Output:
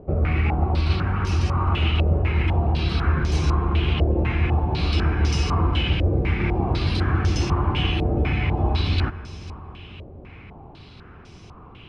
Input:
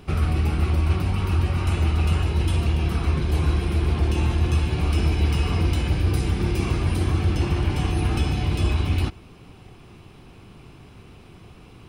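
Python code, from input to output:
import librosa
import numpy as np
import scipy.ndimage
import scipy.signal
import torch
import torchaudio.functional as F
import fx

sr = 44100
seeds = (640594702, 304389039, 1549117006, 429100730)

y = fx.echo_heads(x, sr, ms=165, heads='first and third', feedback_pct=70, wet_db=-19.5)
y = fx.filter_held_lowpass(y, sr, hz=4.0, low_hz=570.0, high_hz=5900.0)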